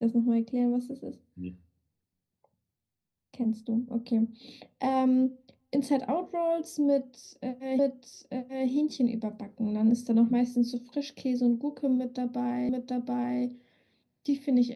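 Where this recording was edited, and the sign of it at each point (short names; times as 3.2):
7.79 repeat of the last 0.89 s
12.69 repeat of the last 0.73 s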